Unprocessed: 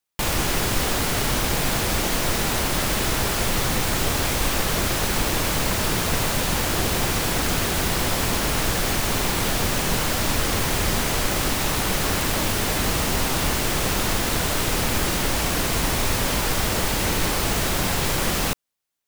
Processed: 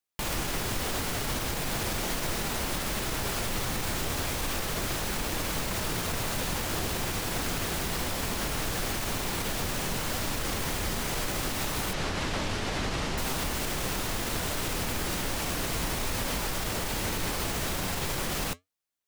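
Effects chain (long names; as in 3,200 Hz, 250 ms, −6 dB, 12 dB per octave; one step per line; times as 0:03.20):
0:11.93–0:13.18: low-pass filter 5,600 Hz 12 dB per octave
brickwall limiter −15 dBFS, peak gain reduction 6 dB
flanger 0.37 Hz, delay 3.4 ms, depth 9.3 ms, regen −78%
level −1.5 dB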